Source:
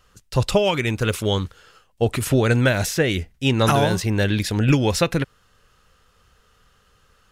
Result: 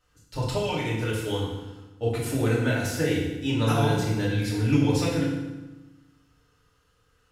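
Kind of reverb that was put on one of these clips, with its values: FDN reverb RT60 1.1 s, low-frequency decay 1.35×, high-frequency decay 0.85×, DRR -7 dB; trim -15 dB

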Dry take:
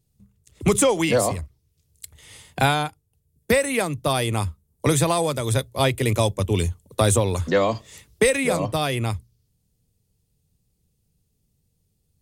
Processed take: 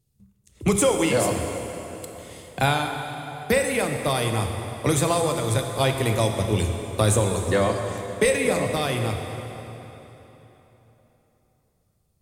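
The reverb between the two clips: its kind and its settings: plate-style reverb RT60 3.7 s, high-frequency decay 0.8×, DRR 3.5 dB; trim -2.5 dB

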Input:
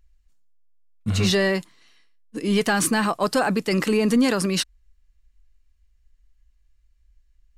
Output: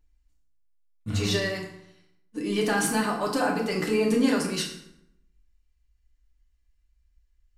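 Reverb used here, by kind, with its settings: FDN reverb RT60 0.79 s, low-frequency decay 1.2×, high-frequency decay 0.7×, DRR -2 dB; trim -8 dB

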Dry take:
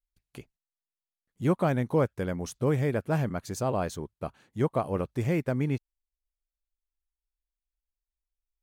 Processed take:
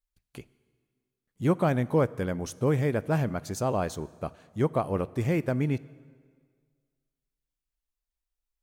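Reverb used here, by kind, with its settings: plate-style reverb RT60 1.8 s, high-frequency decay 0.85×, DRR 19 dB; trim +1 dB

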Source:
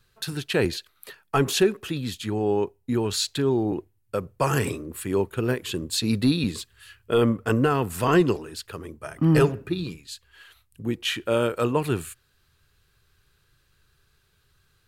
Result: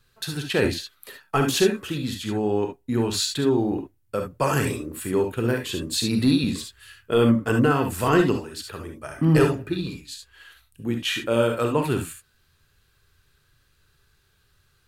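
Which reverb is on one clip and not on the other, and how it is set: gated-style reverb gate 90 ms rising, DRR 4 dB

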